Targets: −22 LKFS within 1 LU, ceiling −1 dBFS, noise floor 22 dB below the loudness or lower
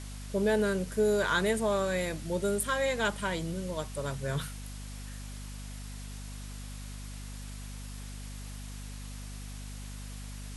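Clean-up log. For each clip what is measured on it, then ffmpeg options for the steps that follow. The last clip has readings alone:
mains hum 50 Hz; hum harmonics up to 250 Hz; level of the hum −40 dBFS; background noise floor −42 dBFS; target noise floor −56 dBFS; integrated loudness −33.5 LKFS; sample peak −16.5 dBFS; target loudness −22.0 LKFS
→ -af "bandreject=frequency=50:width_type=h:width=6,bandreject=frequency=100:width_type=h:width=6,bandreject=frequency=150:width_type=h:width=6,bandreject=frequency=200:width_type=h:width=6,bandreject=frequency=250:width_type=h:width=6"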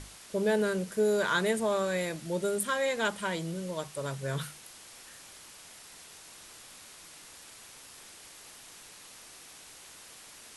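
mains hum none found; background noise floor −51 dBFS; target noise floor −53 dBFS
→ -af "afftdn=noise_reduction=6:noise_floor=-51"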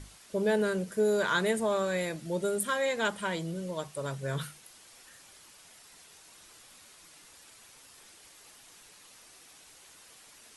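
background noise floor −56 dBFS; integrated loudness −30.5 LKFS; sample peak −16.5 dBFS; target loudness −22.0 LKFS
→ -af "volume=8.5dB"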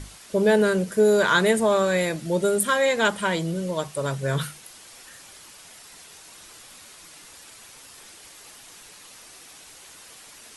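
integrated loudness −22.0 LKFS; sample peak −8.0 dBFS; background noise floor −47 dBFS

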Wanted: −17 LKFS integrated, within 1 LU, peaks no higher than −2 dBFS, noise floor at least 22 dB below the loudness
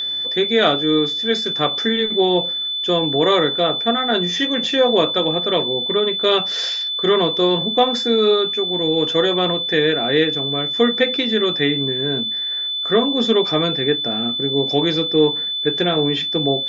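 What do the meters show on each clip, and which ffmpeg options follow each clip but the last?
interfering tone 3,500 Hz; level of the tone −21 dBFS; integrated loudness −17.5 LKFS; sample peak −2.0 dBFS; target loudness −17.0 LKFS
→ -af "bandreject=frequency=3500:width=30"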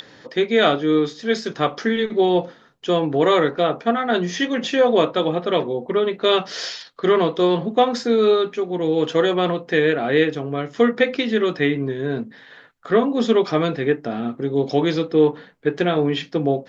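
interfering tone none found; integrated loudness −20.0 LKFS; sample peak −3.0 dBFS; target loudness −17.0 LKFS
→ -af "volume=3dB,alimiter=limit=-2dB:level=0:latency=1"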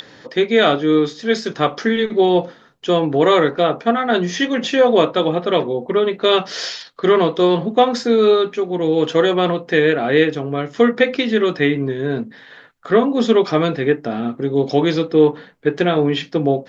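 integrated loudness −17.0 LKFS; sample peak −2.0 dBFS; background noise floor −45 dBFS

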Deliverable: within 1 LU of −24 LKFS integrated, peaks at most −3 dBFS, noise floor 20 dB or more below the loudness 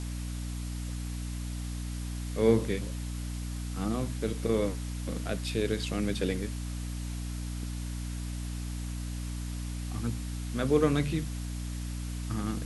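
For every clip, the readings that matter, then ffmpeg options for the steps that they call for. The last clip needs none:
mains hum 60 Hz; hum harmonics up to 300 Hz; level of the hum −33 dBFS; background noise floor −36 dBFS; target noise floor −53 dBFS; integrated loudness −33.0 LKFS; sample peak −11.0 dBFS; target loudness −24.0 LKFS
→ -af "bandreject=frequency=60:width_type=h:width=4,bandreject=frequency=120:width_type=h:width=4,bandreject=frequency=180:width_type=h:width=4,bandreject=frequency=240:width_type=h:width=4,bandreject=frequency=300:width_type=h:width=4"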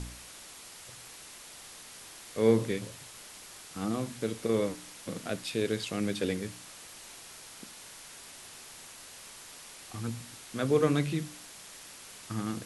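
mains hum none found; background noise floor −49 dBFS; target noise floor −52 dBFS
→ -af "afftdn=noise_reduction=6:noise_floor=-49"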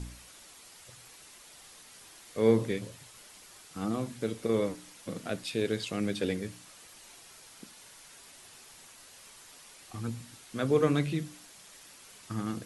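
background noise floor −54 dBFS; integrated loudness −32.0 LKFS; sample peak −11.5 dBFS; target loudness −24.0 LKFS
→ -af "volume=8dB"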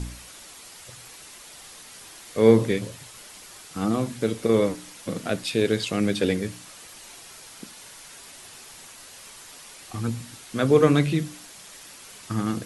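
integrated loudness −24.0 LKFS; sample peak −3.5 dBFS; background noise floor −46 dBFS

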